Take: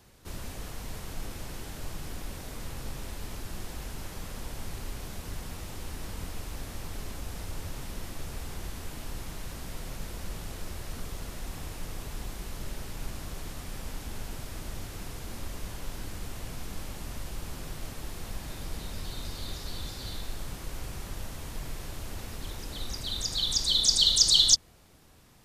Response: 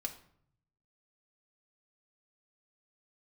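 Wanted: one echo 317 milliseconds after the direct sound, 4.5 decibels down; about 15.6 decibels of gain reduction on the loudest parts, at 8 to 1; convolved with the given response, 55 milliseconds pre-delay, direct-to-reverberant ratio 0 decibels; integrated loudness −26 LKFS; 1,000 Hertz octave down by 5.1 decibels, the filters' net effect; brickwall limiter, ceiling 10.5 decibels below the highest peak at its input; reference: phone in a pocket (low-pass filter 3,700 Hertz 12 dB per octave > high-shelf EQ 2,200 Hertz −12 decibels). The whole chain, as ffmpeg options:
-filter_complex "[0:a]equalizer=frequency=1000:width_type=o:gain=-4,acompressor=threshold=-33dB:ratio=8,alimiter=level_in=9.5dB:limit=-24dB:level=0:latency=1,volume=-9.5dB,aecho=1:1:317:0.596,asplit=2[link_01][link_02];[1:a]atrim=start_sample=2205,adelay=55[link_03];[link_02][link_03]afir=irnorm=-1:irlink=0,volume=0.5dB[link_04];[link_01][link_04]amix=inputs=2:normalize=0,lowpass=3700,highshelf=frequency=2200:gain=-12,volume=16.5dB"

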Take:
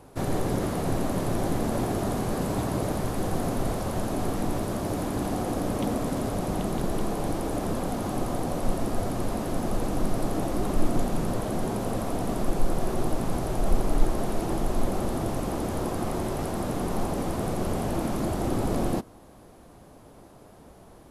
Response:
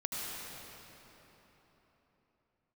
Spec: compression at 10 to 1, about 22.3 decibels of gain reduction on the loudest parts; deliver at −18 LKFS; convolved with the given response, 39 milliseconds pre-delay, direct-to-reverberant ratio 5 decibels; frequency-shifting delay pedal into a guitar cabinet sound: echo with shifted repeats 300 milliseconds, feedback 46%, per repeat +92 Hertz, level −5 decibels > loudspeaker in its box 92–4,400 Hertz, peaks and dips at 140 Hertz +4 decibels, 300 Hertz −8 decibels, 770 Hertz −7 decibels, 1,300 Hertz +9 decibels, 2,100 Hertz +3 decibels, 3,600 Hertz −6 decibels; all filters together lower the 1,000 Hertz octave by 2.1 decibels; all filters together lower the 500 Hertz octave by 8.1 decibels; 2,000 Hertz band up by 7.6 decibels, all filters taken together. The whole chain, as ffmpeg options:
-filter_complex "[0:a]equalizer=frequency=500:width_type=o:gain=-8,equalizer=frequency=1000:width_type=o:gain=-3.5,equalizer=frequency=2000:width_type=o:gain=8,acompressor=threshold=-36dB:ratio=10,asplit=2[link_01][link_02];[1:a]atrim=start_sample=2205,adelay=39[link_03];[link_02][link_03]afir=irnorm=-1:irlink=0,volume=-9dB[link_04];[link_01][link_04]amix=inputs=2:normalize=0,asplit=7[link_05][link_06][link_07][link_08][link_09][link_10][link_11];[link_06]adelay=300,afreqshift=92,volume=-5dB[link_12];[link_07]adelay=600,afreqshift=184,volume=-11.7dB[link_13];[link_08]adelay=900,afreqshift=276,volume=-18.5dB[link_14];[link_09]adelay=1200,afreqshift=368,volume=-25.2dB[link_15];[link_10]adelay=1500,afreqshift=460,volume=-32dB[link_16];[link_11]adelay=1800,afreqshift=552,volume=-38.7dB[link_17];[link_05][link_12][link_13][link_14][link_15][link_16][link_17]amix=inputs=7:normalize=0,highpass=92,equalizer=frequency=140:width_type=q:width=4:gain=4,equalizer=frequency=300:width_type=q:width=4:gain=-8,equalizer=frequency=770:width_type=q:width=4:gain=-7,equalizer=frequency=1300:width_type=q:width=4:gain=9,equalizer=frequency=2100:width_type=q:width=4:gain=3,equalizer=frequency=3600:width_type=q:width=4:gain=-6,lowpass=frequency=4400:width=0.5412,lowpass=frequency=4400:width=1.3066,volume=21.5dB"

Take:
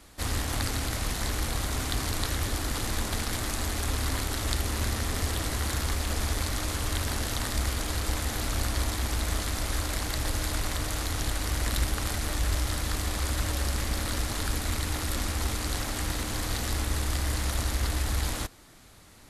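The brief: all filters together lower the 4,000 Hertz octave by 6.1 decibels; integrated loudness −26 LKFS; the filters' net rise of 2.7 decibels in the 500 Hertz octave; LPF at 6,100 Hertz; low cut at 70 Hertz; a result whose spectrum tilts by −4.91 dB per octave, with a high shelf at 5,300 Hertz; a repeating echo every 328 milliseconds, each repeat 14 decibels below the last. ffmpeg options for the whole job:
ffmpeg -i in.wav -af "highpass=70,lowpass=6100,equalizer=frequency=500:width_type=o:gain=3.5,equalizer=frequency=4000:width_type=o:gain=-4.5,highshelf=frequency=5300:gain=-5,aecho=1:1:328|656:0.2|0.0399,volume=7dB" out.wav

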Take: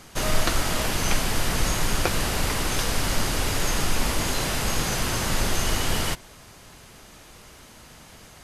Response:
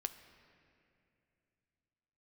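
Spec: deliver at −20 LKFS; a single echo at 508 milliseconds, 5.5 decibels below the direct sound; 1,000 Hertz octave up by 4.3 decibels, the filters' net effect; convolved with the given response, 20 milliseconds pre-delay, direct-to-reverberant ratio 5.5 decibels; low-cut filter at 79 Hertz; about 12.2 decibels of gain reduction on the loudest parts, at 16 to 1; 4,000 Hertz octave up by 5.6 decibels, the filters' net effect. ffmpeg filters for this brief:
-filter_complex "[0:a]highpass=79,equalizer=frequency=1000:width_type=o:gain=5,equalizer=frequency=4000:width_type=o:gain=7,acompressor=threshold=-29dB:ratio=16,aecho=1:1:508:0.531,asplit=2[link_01][link_02];[1:a]atrim=start_sample=2205,adelay=20[link_03];[link_02][link_03]afir=irnorm=-1:irlink=0,volume=-4dB[link_04];[link_01][link_04]amix=inputs=2:normalize=0,volume=9.5dB"

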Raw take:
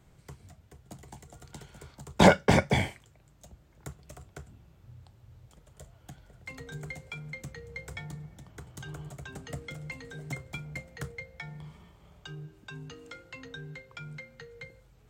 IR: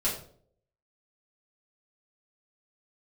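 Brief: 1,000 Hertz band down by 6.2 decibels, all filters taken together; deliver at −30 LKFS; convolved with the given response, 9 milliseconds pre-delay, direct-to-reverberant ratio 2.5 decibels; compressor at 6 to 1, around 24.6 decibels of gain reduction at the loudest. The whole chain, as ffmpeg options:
-filter_complex "[0:a]equalizer=frequency=1000:width_type=o:gain=-8.5,acompressor=threshold=-43dB:ratio=6,asplit=2[link_01][link_02];[1:a]atrim=start_sample=2205,adelay=9[link_03];[link_02][link_03]afir=irnorm=-1:irlink=0,volume=-10.5dB[link_04];[link_01][link_04]amix=inputs=2:normalize=0,volume=16dB"

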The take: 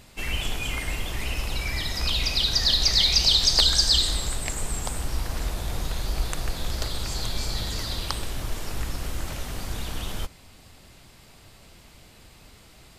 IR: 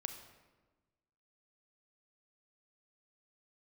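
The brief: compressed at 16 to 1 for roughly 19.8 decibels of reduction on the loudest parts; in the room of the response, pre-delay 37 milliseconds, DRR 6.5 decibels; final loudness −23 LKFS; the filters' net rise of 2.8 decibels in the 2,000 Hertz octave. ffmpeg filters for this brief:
-filter_complex "[0:a]equalizer=frequency=2000:width_type=o:gain=3.5,acompressor=threshold=-35dB:ratio=16,asplit=2[link_01][link_02];[1:a]atrim=start_sample=2205,adelay=37[link_03];[link_02][link_03]afir=irnorm=-1:irlink=0,volume=-5dB[link_04];[link_01][link_04]amix=inputs=2:normalize=0,volume=17dB"

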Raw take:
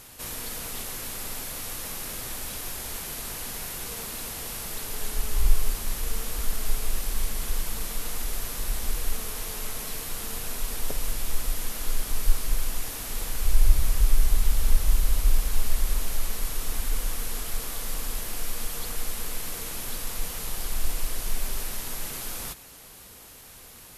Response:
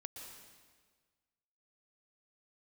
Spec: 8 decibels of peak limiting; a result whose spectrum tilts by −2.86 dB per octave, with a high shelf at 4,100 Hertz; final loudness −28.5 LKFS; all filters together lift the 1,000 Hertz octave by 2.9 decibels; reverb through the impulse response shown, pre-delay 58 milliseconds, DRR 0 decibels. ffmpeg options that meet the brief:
-filter_complex "[0:a]equalizer=frequency=1000:width_type=o:gain=4,highshelf=frequency=4100:gain=-4.5,alimiter=limit=-12.5dB:level=0:latency=1,asplit=2[link_01][link_02];[1:a]atrim=start_sample=2205,adelay=58[link_03];[link_02][link_03]afir=irnorm=-1:irlink=0,volume=4dB[link_04];[link_01][link_04]amix=inputs=2:normalize=0,volume=2dB"

